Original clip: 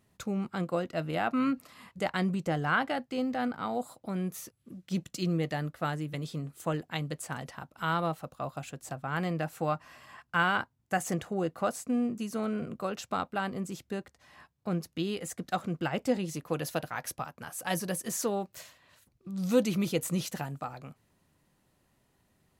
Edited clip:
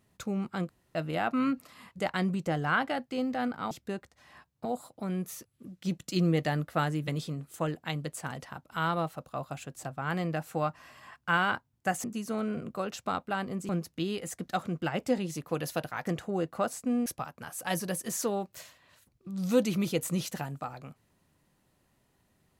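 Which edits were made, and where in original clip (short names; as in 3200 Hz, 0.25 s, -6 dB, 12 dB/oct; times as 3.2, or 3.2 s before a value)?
0.69–0.95 room tone
5.18–6.34 gain +3.5 dB
11.1–12.09 move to 17.06
13.74–14.68 move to 3.71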